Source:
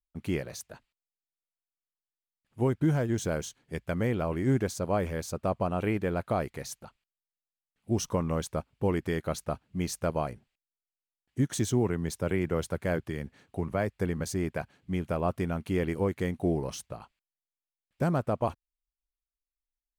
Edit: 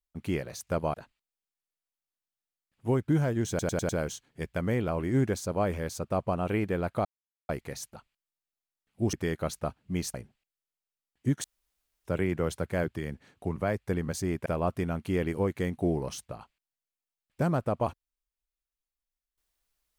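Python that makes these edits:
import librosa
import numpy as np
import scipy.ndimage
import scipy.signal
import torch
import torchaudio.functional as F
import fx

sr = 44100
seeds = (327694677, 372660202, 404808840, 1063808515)

y = fx.edit(x, sr, fx.stutter(start_s=3.22, slice_s=0.1, count=5),
    fx.insert_silence(at_s=6.38, length_s=0.44),
    fx.cut(start_s=8.02, length_s=0.96),
    fx.move(start_s=9.99, length_s=0.27, to_s=0.67),
    fx.room_tone_fill(start_s=11.56, length_s=0.61),
    fx.cut(start_s=14.58, length_s=0.49), tone=tone)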